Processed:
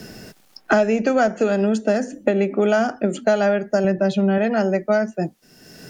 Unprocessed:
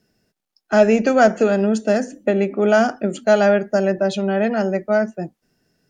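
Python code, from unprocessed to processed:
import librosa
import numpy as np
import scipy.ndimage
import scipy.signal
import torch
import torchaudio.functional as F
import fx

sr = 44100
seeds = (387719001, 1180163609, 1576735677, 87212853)

y = fx.bass_treble(x, sr, bass_db=8, treble_db=-5, at=(3.84, 4.38))
y = fx.band_squash(y, sr, depth_pct=100)
y = y * librosa.db_to_amplitude(-2.5)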